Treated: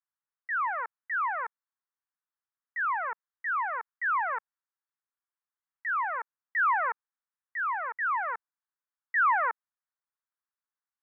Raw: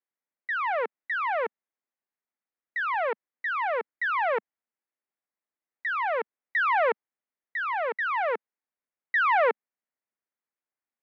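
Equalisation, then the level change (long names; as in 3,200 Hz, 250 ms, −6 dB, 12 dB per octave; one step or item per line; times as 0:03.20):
flat-topped band-pass 1,300 Hz, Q 1.5
high-frequency loss of the air 350 metres
+3.0 dB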